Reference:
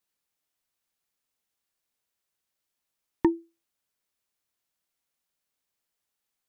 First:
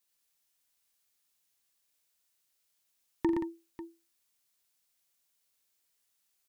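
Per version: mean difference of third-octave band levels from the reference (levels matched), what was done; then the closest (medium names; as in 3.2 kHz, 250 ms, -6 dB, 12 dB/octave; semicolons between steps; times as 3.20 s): 11.0 dB: treble shelf 2.5 kHz +9.5 dB; peak limiter -15 dBFS, peak gain reduction 5 dB; on a send: multi-tap echo 45/87/119/177/544 ms -10/-13.5/-4.5/-9/-15 dB; on the sum: trim -3.5 dB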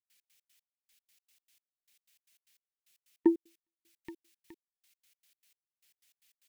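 3.5 dB: on a send: feedback delay 419 ms, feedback 39%, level -17.5 dB; on the sum: trance gate ".x.x.x...x" 152 bpm -60 dB; resonant high shelf 1.6 kHz +12 dB, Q 1.5; trim +2 dB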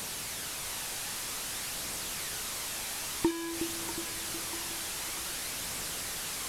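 18.5 dB: one-bit delta coder 64 kbps, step -26 dBFS; flange 0.52 Hz, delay 0.1 ms, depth 1.2 ms, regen +74%; two-band feedback delay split 410 Hz, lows 365 ms, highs 642 ms, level -7 dB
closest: second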